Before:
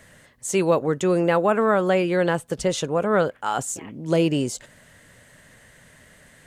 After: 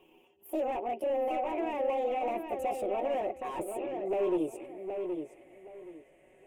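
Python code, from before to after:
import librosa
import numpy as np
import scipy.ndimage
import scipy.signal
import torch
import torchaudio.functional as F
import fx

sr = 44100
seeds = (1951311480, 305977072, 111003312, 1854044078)

y = fx.pitch_glide(x, sr, semitones=9.0, runs='ending unshifted')
y = fx.low_shelf(y, sr, hz=180.0, db=-7.5)
y = y + 0.56 * np.pad(y, (int(5.4 * sr / 1000.0), 0))[:len(y)]
y = fx.rider(y, sr, range_db=4, speed_s=0.5)
y = np.clip(y, -10.0 ** (-24.5 / 20.0), 10.0 ** (-24.5 / 20.0))
y = fx.curve_eq(y, sr, hz=(110.0, 190.0, 320.0, 740.0, 1600.0, 2600.0, 4300.0, 6900.0, 14000.0), db=(0, -11, 10, 4, -15, 2, -28, -14, -12))
y = fx.echo_filtered(y, sr, ms=771, feedback_pct=24, hz=4200.0, wet_db=-6.0)
y = F.gain(torch.from_numpy(y), -9.0).numpy()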